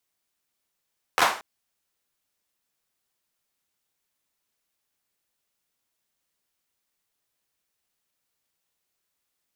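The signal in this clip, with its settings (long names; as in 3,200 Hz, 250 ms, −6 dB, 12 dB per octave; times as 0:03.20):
synth clap length 0.23 s, apart 12 ms, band 990 Hz, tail 0.41 s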